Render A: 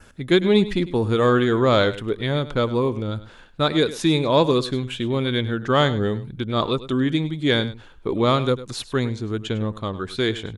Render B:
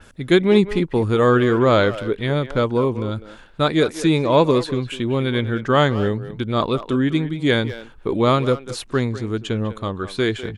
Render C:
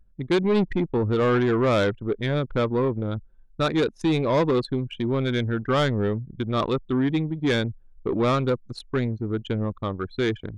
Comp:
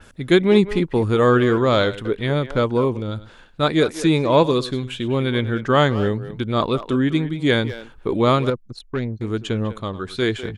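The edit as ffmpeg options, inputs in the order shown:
-filter_complex "[0:a]asplit=4[s0][s1][s2][s3];[1:a]asplit=6[s4][s5][s6][s7][s8][s9];[s4]atrim=end=1.582[s10];[s0]atrim=start=1.578:end=2.052[s11];[s5]atrim=start=2.048:end=2.972[s12];[s1]atrim=start=2.968:end=3.632[s13];[s6]atrim=start=3.628:end=4.432[s14];[s2]atrim=start=4.428:end=5.082[s15];[s7]atrim=start=5.078:end=8.502[s16];[2:a]atrim=start=8.498:end=9.212[s17];[s8]atrim=start=9.208:end=9.802[s18];[s3]atrim=start=9.798:end=10.222[s19];[s9]atrim=start=10.218[s20];[s10][s11]acrossfade=d=0.004:c1=hsin:c2=hsin[s21];[s21][s12]acrossfade=d=0.004:c1=hsin:c2=hsin[s22];[s22][s13]acrossfade=d=0.004:c1=hsin:c2=hsin[s23];[s23][s14]acrossfade=d=0.004:c1=hsin:c2=hsin[s24];[s24][s15]acrossfade=d=0.004:c1=hsin:c2=hsin[s25];[s25][s16]acrossfade=d=0.004:c1=hsin:c2=hsin[s26];[s26][s17]acrossfade=d=0.004:c1=hsin:c2=hsin[s27];[s27][s18]acrossfade=d=0.004:c1=hsin:c2=hsin[s28];[s28][s19]acrossfade=d=0.004:c1=hsin:c2=hsin[s29];[s29][s20]acrossfade=d=0.004:c1=hsin:c2=hsin"

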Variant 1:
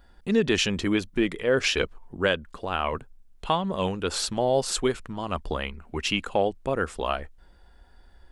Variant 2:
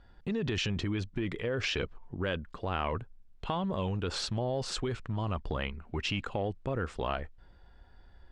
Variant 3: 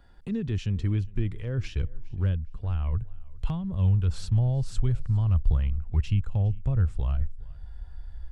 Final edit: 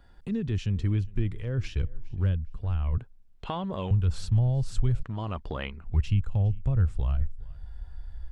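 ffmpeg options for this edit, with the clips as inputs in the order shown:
-filter_complex "[1:a]asplit=2[s0][s1];[2:a]asplit=3[s2][s3][s4];[s2]atrim=end=2.982[s5];[s0]atrim=start=2.978:end=3.912[s6];[s3]atrim=start=3.908:end=5.032[s7];[s1]atrim=start=5.028:end=5.842[s8];[s4]atrim=start=5.838[s9];[s5][s6]acrossfade=d=0.004:c1=hsin:c2=hsin[s10];[s10][s7]acrossfade=d=0.004:c1=hsin:c2=hsin[s11];[s11][s8]acrossfade=d=0.004:c1=hsin:c2=hsin[s12];[s12][s9]acrossfade=d=0.004:c1=hsin:c2=hsin"

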